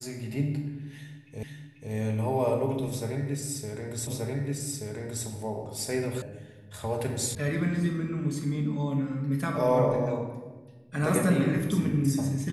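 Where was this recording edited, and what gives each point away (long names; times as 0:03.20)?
0:01.43: the same again, the last 0.49 s
0:04.07: the same again, the last 1.18 s
0:06.22: cut off before it has died away
0:07.35: cut off before it has died away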